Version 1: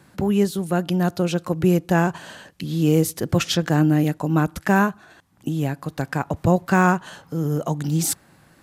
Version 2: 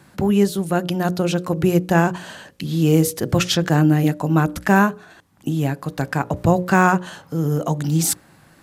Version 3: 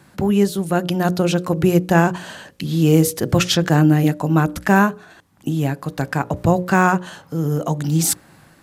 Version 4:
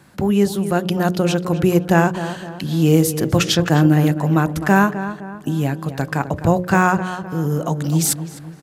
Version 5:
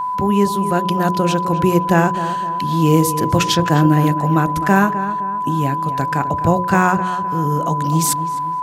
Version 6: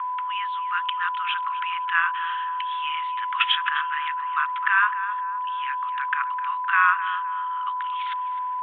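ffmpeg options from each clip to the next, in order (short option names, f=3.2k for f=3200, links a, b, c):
-af "bandreject=f=60:t=h:w=6,bandreject=f=120:t=h:w=6,bandreject=f=180:t=h:w=6,bandreject=f=240:t=h:w=6,bandreject=f=300:t=h:w=6,bandreject=f=360:t=h:w=6,bandreject=f=420:t=h:w=6,bandreject=f=480:t=h:w=6,bandreject=f=540:t=h:w=6,bandreject=f=600:t=h:w=6,volume=3dB"
-af "dynaudnorm=f=560:g=3:m=4.5dB"
-filter_complex "[0:a]asplit=2[a][b];[b]adelay=257,lowpass=f=2.1k:p=1,volume=-11dB,asplit=2[c][d];[d]adelay=257,lowpass=f=2.1k:p=1,volume=0.45,asplit=2[e][f];[f]adelay=257,lowpass=f=2.1k:p=1,volume=0.45,asplit=2[g][h];[h]adelay=257,lowpass=f=2.1k:p=1,volume=0.45,asplit=2[i][j];[j]adelay=257,lowpass=f=2.1k:p=1,volume=0.45[k];[a][c][e][g][i][k]amix=inputs=6:normalize=0"
-af "aeval=exprs='val(0)+0.112*sin(2*PI*1000*n/s)':c=same"
-af "asuperpass=centerf=1900:order=20:qfactor=0.8,volume=1.5dB"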